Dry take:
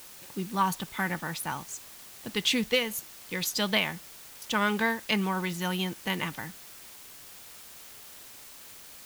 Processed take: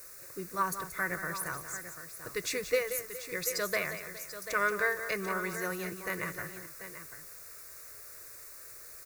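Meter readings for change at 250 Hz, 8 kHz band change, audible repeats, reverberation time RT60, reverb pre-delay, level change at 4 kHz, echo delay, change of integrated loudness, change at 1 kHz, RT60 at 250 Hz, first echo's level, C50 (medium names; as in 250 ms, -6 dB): -11.5 dB, -1.0 dB, 3, no reverb, no reverb, -12.5 dB, 179 ms, -4.5 dB, -4.0 dB, no reverb, -10.5 dB, no reverb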